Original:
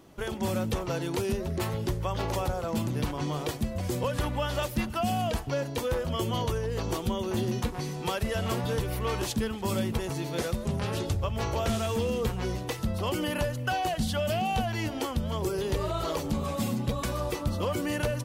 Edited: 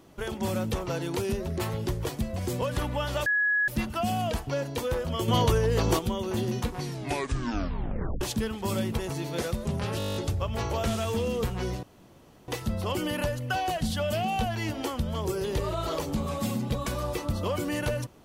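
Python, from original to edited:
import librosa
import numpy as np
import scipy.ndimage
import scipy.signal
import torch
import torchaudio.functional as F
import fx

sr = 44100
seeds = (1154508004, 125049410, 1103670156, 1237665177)

y = fx.edit(x, sr, fx.cut(start_s=2.05, length_s=1.42),
    fx.insert_tone(at_s=4.68, length_s=0.42, hz=1680.0, db=-21.5),
    fx.clip_gain(start_s=6.28, length_s=0.71, db=6.5),
    fx.tape_stop(start_s=7.81, length_s=1.4),
    fx.stutter(start_s=10.98, slice_s=0.02, count=10),
    fx.insert_room_tone(at_s=12.65, length_s=0.65), tone=tone)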